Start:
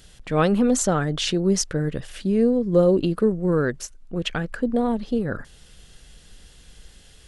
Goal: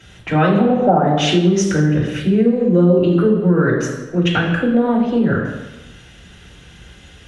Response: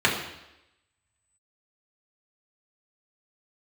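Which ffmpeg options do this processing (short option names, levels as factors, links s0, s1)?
-filter_complex "[0:a]asettb=1/sr,asplit=3[s0][s1][s2];[s0]atrim=end=0.584[s3];[s1]atrim=start=0.58:end=1.04,asetpts=PTS-STARTPTS,afade=t=in:d=0.004:c=qsin,afade=t=out:st=0.456:d=0.004:c=qsin,lowpass=f=760:t=q:w=4.5[s4];[s2]atrim=start=1.036[s5];[s3][s4]acrossfade=d=0.004:c1=hsin:c2=qsin[s6];[s6][s5]acrossfade=d=0.004:c1=qsin:c2=hsin[s7];[1:a]atrim=start_sample=2205,asetrate=37485,aresample=44100[s8];[s7][s8]afir=irnorm=-1:irlink=0,acompressor=threshold=0.562:ratio=3,volume=0.447"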